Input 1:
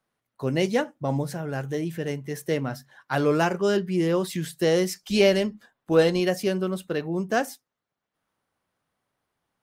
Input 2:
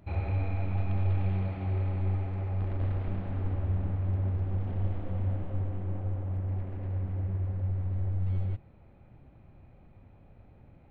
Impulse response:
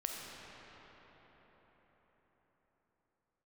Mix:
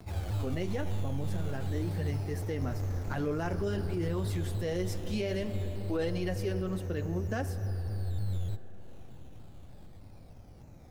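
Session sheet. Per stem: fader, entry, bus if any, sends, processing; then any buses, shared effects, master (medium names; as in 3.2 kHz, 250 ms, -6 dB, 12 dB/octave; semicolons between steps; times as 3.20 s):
-8.0 dB, 0.00 s, send -12 dB, bass shelf 480 Hz +5.5 dB; flange 0.48 Hz, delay 0.8 ms, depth 7.6 ms, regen -40%; peaking EQ 1.9 kHz +2.5 dB
-4.0 dB, 0.00 s, send -21 dB, upward compressor, threshold -39 dBFS; decimation with a swept rate 10×, swing 60% 0.25 Hz; vibrato with a chosen wave saw down 3.3 Hz, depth 160 cents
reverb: on, RT60 5.2 s, pre-delay 5 ms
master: peak limiter -24 dBFS, peak gain reduction 10.5 dB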